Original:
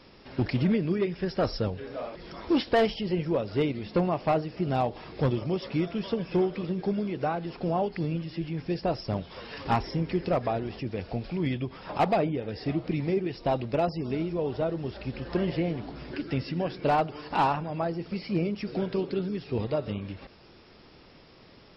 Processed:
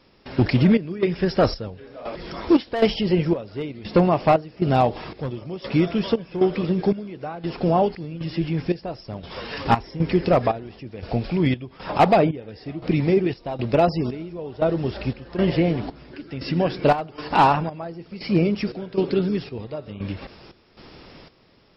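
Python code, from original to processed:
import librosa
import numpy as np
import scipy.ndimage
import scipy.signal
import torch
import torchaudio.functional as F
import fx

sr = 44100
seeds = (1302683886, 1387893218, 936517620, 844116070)

y = fx.step_gate(x, sr, bpm=117, pattern='..xxxx..xxxx..', floor_db=-12.0, edge_ms=4.5)
y = y * librosa.db_to_amplitude(8.5)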